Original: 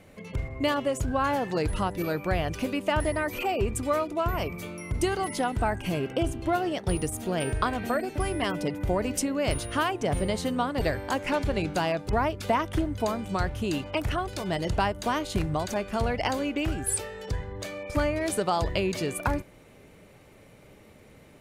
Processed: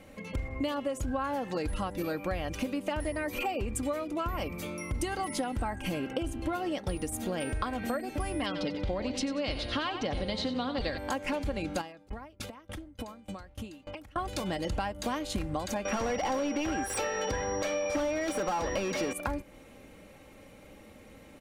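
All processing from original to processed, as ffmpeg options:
ffmpeg -i in.wav -filter_complex "[0:a]asettb=1/sr,asplit=3[link_01][link_02][link_03];[link_01]atrim=end=8.464[link_04];[link_02]atrim=start=8.46:end=10.98,asetpts=PTS-STARTPTS,afade=type=in:duration=0.004:curve=qsin,afade=type=out:start_time=2.516:duration=0.004:curve=qsin,lowpass=frequency=4100:width_type=q:width=3.1,aecho=1:1:93|186|279|372:0.282|0.0986|0.0345|0.0121,atrim=end_sample=111132[link_05];[link_03]atrim=start=10.976[link_06];[link_04][link_05]acrossfade=duration=0.004:curve1=hsin:curve2=qsin[link_07];[link_07][link_06]acrossfade=duration=0.004:curve1=qsin:curve2=hsin,asettb=1/sr,asplit=3[link_08][link_09][link_10];[link_08]atrim=end=11.814[link_11];[link_09]atrim=start=11.81:end=14.16,asetpts=PTS-STARTPTS,afade=type=in:duration=0.004:curve=qsin,afade=type=out:start_time=2.346:duration=0.004:curve=qsin,acompressor=threshold=-32dB:ratio=6:attack=3.2:release=140:knee=1:detection=peak,aeval=exprs='val(0)*pow(10,-25*if(lt(mod(3.4*n/s,1),2*abs(3.4)/1000),1-mod(3.4*n/s,1)/(2*abs(3.4)/1000),(mod(3.4*n/s,1)-2*abs(3.4)/1000)/(1-2*abs(3.4)/1000))/20)':channel_layout=same[link_12];[link_10]atrim=start=14.156[link_13];[link_11][link_12]acrossfade=duration=0.004:curve1=hsin:curve2=qsin[link_14];[link_14][link_13]acrossfade=duration=0.004:curve1=qsin:curve2=hsin,asettb=1/sr,asplit=3[link_15][link_16][link_17];[link_15]atrim=end=15.854[link_18];[link_16]atrim=start=15.85:end=19.13,asetpts=PTS-STARTPTS,afade=type=in:duration=0.004:curve=qsin,afade=type=out:start_time=3.276:duration=0.004:curve=qsin,asplit=2[link_19][link_20];[link_20]highpass=frequency=720:poles=1,volume=26dB,asoftclip=type=tanh:threshold=-13dB[link_21];[link_19][link_21]amix=inputs=2:normalize=0,lowpass=frequency=1400:poles=1,volume=-6dB,aeval=exprs='val(0)+0.01*sin(2*PI*5700*n/s)':channel_layout=same,aeval=exprs='0.15*(abs(mod(val(0)/0.15+3,4)-2)-1)':channel_layout=same[link_22];[link_17]atrim=start=19.126[link_23];[link_18][link_22]acrossfade=duration=0.004:curve1=hsin:curve2=qsin[link_24];[link_24][link_23]acrossfade=duration=0.004:curve1=qsin:curve2=hsin,aecho=1:1:3.7:0.5,acompressor=threshold=-29dB:ratio=6" out.wav

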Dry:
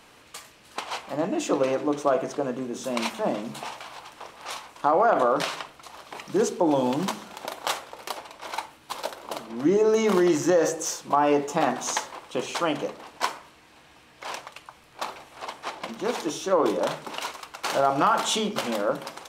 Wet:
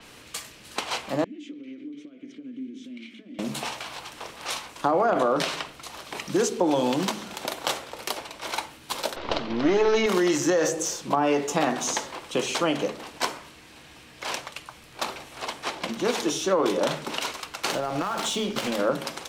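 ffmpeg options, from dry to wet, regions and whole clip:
ffmpeg -i in.wav -filter_complex "[0:a]asettb=1/sr,asplit=3[link_01][link_02][link_03];[link_01]atrim=end=1.244[link_04];[link_02]atrim=start=1.24:end=3.39,asetpts=PTS-STARTPTS,afade=type=in:duration=0.004:curve=qsin,afade=type=out:start_time=2.146:duration=0.004:curve=qsin,acompressor=threshold=-32dB:ratio=8:attack=3.2:release=140:knee=1:detection=peak,asplit=3[link_05][link_06][link_07];[link_05]bandpass=frequency=270:width_type=q:width=8,volume=0dB[link_08];[link_06]bandpass=frequency=2290:width_type=q:width=8,volume=-6dB[link_09];[link_07]bandpass=frequency=3010:width_type=q:width=8,volume=-9dB[link_10];[link_08][link_09][link_10]amix=inputs=3:normalize=0[link_11];[link_03]atrim=start=3.386[link_12];[link_04][link_11]acrossfade=duration=0.004:curve1=hsin:curve2=qsin[link_13];[link_13][link_12]acrossfade=duration=0.004:curve1=qsin:curve2=hsin,asettb=1/sr,asplit=3[link_14][link_15][link_16];[link_14]atrim=end=9.164[link_17];[link_15]atrim=start=9.16:end=10.06,asetpts=PTS-STARTPTS,afade=type=in:duration=0.004:curve=qsin,afade=type=out:start_time=0.896:duration=0.004:curve=qsin,aeval=exprs='if(lt(val(0),0),0.447*val(0),val(0))':channel_layout=same,lowpass=frequency=4800:width=0.5412,lowpass=frequency=4800:width=1.3066,acontrast=75[link_18];[link_16]atrim=start=10.056[link_19];[link_17][link_18]acrossfade=duration=0.004:curve1=hsin:curve2=qsin[link_20];[link_20][link_19]acrossfade=duration=0.004:curve1=qsin:curve2=hsin,asettb=1/sr,asplit=3[link_21][link_22][link_23];[link_21]atrim=end=17.724[link_24];[link_22]atrim=start=17.72:end=18.79,asetpts=PTS-STARTPTS,afade=type=in:duration=0.004:curve=qsin,afade=type=out:start_time=1.066:duration=0.004:curve=qsin,acompressor=threshold=-25dB:ratio=6:attack=3.2:release=140:knee=1:detection=peak,aeval=exprs='sgn(val(0))*max(abs(val(0))-0.00631,0)':channel_layout=same[link_25];[link_23]atrim=start=18.786[link_26];[link_24][link_25]acrossfade=duration=0.004:curve1=hsin:curve2=qsin[link_27];[link_27][link_26]acrossfade=duration=0.004:curve1=qsin:curve2=hsin,equalizer=frequency=900:width=0.72:gain=-6.5,acrossover=split=340|760[link_28][link_29][link_30];[link_28]acompressor=threshold=-38dB:ratio=4[link_31];[link_29]acompressor=threshold=-32dB:ratio=4[link_32];[link_30]acompressor=threshold=-33dB:ratio=4[link_33];[link_31][link_32][link_33]amix=inputs=3:normalize=0,adynamicequalizer=threshold=0.00355:dfrequency=6600:dqfactor=0.7:tfrequency=6600:tqfactor=0.7:attack=5:release=100:ratio=0.375:range=2:mode=cutabove:tftype=highshelf,volume=7.5dB" out.wav

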